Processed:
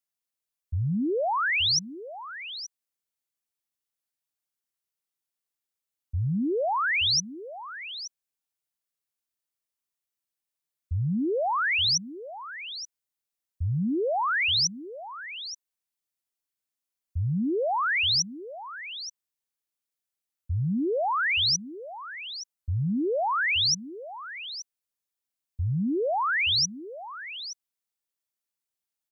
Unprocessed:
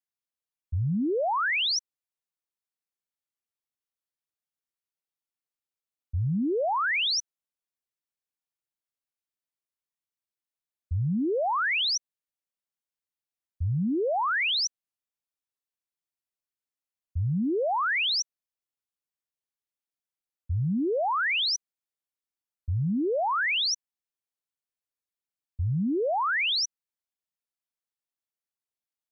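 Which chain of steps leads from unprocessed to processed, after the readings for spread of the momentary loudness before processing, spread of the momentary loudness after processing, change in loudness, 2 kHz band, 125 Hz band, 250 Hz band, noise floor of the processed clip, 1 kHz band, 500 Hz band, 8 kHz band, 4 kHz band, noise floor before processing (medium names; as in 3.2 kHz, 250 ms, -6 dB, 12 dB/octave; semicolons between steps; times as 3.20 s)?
8 LU, 17 LU, +0.5 dB, +1.0 dB, 0.0 dB, 0.0 dB, under -85 dBFS, +0.5 dB, +0.5 dB, no reading, +3.0 dB, under -85 dBFS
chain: treble shelf 4.5 kHz +6 dB; delay 875 ms -13.5 dB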